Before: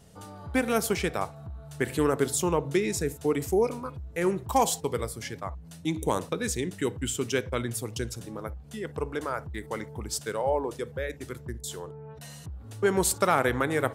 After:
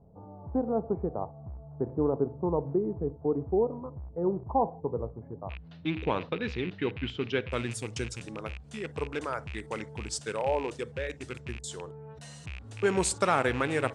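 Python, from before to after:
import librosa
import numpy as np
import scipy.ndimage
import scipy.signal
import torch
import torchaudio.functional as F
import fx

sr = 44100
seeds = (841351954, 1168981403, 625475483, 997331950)

y = fx.rattle_buzz(x, sr, strikes_db=-37.0, level_db=-28.0)
y = fx.steep_lowpass(y, sr, hz=fx.steps((0.0, 950.0), (5.49, 4100.0), (7.5, 9100.0)), slope=36)
y = y * 10.0 ** (-2.0 / 20.0)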